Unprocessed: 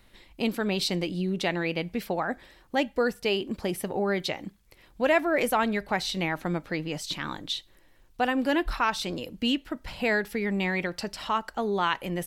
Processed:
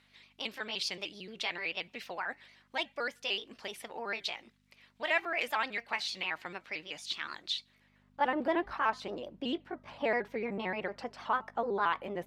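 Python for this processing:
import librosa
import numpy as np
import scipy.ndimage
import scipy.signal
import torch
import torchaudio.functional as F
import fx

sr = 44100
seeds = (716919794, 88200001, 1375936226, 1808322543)

y = fx.pitch_trill(x, sr, semitones=2.5, every_ms=75)
y = fx.add_hum(y, sr, base_hz=50, snr_db=15)
y = fx.filter_sweep_bandpass(y, sr, from_hz=2600.0, to_hz=780.0, start_s=7.76, end_s=8.35, q=0.77)
y = y * librosa.db_to_amplitude(-1.5)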